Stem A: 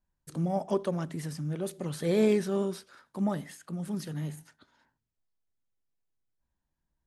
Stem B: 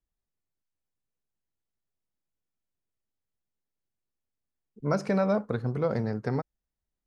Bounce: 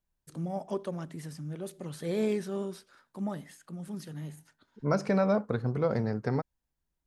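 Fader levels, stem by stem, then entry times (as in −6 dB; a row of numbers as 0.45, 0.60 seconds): −5.0, −0.5 decibels; 0.00, 0.00 seconds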